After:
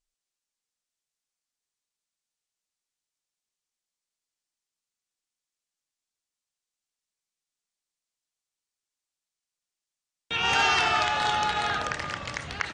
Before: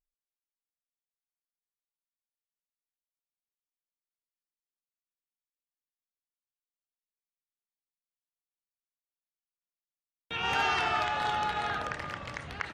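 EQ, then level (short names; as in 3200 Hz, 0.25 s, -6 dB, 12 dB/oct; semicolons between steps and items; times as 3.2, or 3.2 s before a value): LPF 8300 Hz 24 dB/oct; high shelf 4200 Hz +12 dB; +3.5 dB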